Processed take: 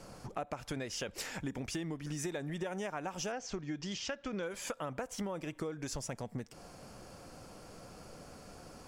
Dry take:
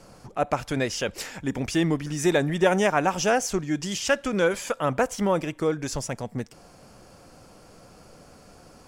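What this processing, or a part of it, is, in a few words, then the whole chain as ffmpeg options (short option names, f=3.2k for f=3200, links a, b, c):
serial compression, leveller first: -filter_complex "[0:a]acompressor=threshold=-25dB:ratio=2,acompressor=threshold=-35dB:ratio=5,asettb=1/sr,asplit=3[a][b][c];[a]atrim=end=3.324[d];[b]atrim=start=3.32:end=4.43,asetpts=PTS-STARTPTS,afade=t=in:d=0.004:c=qsin,afade=t=out:st=1.106:d=0.004:c=qsin,lowpass=f=5.9k:w=0.5412,lowpass=f=5.9k:w=1.3066[e];[c]atrim=start=4.426[f];[d][e]acrossfade=d=0.004:c1=hsin:c2=qsin[g];[g][f]acrossfade=d=0.004:c1=qsin:c2=hsin,volume=-1.5dB"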